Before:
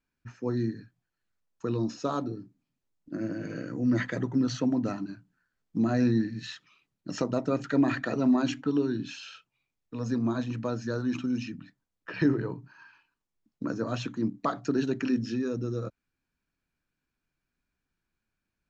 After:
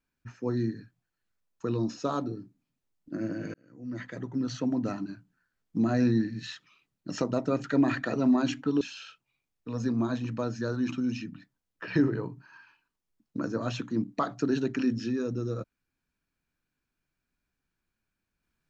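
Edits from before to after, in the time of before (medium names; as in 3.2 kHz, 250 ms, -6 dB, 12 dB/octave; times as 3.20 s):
3.54–5.01 s: fade in
8.81–9.07 s: delete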